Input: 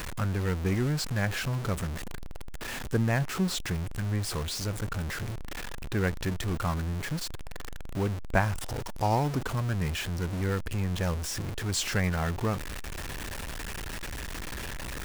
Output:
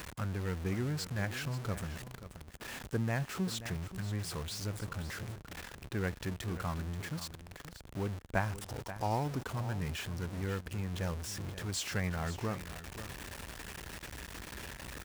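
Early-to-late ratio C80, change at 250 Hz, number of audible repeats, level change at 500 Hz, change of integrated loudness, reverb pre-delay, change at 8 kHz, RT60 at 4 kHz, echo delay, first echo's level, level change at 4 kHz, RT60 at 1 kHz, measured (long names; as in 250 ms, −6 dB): no reverb audible, −7.0 dB, 1, −7.0 dB, −7.0 dB, no reverb audible, −7.0 dB, no reverb audible, 532 ms, −13.0 dB, −7.0 dB, no reverb audible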